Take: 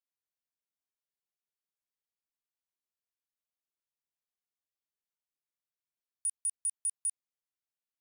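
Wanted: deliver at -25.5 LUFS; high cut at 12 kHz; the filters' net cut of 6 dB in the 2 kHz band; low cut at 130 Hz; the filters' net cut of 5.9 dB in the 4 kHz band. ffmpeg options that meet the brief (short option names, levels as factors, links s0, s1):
-af "highpass=130,lowpass=12000,equalizer=f=2000:t=o:g=-6,equalizer=f=4000:t=o:g=-6.5,volume=3.16"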